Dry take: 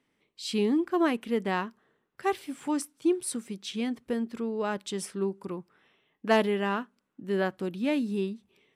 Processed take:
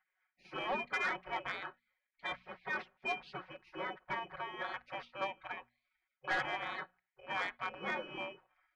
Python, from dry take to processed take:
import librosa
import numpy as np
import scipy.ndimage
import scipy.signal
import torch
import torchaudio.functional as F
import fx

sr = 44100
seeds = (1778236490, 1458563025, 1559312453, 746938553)

y = fx.bit_reversed(x, sr, seeds[0], block=16)
y = scipy.signal.sosfilt(scipy.signal.butter(4, 1700.0, 'lowpass', fs=sr, output='sos'), y)
y = fx.spec_gate(y, sr, threshold_db=-25, keep='weak')
y = fx.low_shelf(y, sr, hz=250.0, db=-5.5)
y = fx.hum_notches(y, sr, base_hz=60, count=4)
y = y + 0.84 * np.pad(y, (int(5.4 * sr / 1000.0), 0))[:len(y)]
y = 10.0 ** (-39.0 / 20.0) * np.tanh(y / 10.0 ** (-39.0 / 20.0))
y = y * 10.0 ** (12.5 / 20.0)